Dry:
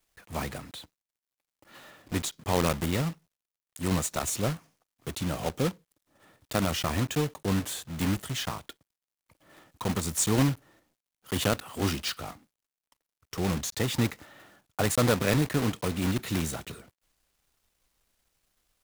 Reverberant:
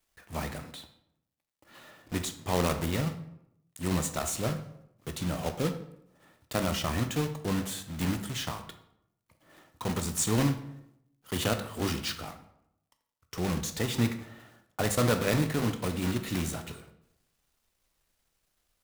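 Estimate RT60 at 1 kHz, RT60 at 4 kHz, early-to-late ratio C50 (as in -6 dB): 0.75 s, 0.50 s, 10.5 dB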